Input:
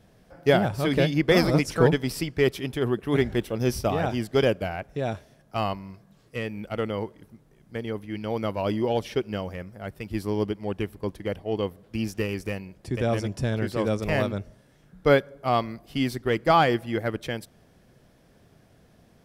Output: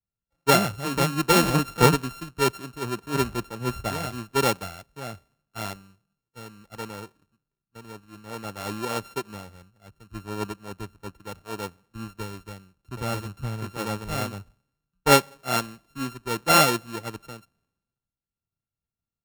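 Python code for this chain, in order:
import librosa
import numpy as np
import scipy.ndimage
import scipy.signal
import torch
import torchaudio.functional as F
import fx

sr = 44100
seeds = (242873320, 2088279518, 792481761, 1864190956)

y = np.r_[np.sort(x[:len(x) // 32 * 32].reshape(-1, 32), axis=1).ravel(), x[len(x) // 32 * 32:]]
y = fx.band_widen(y, sr, depth_pct=100)
y = y * librosa.db_to_amplitude(-5.0)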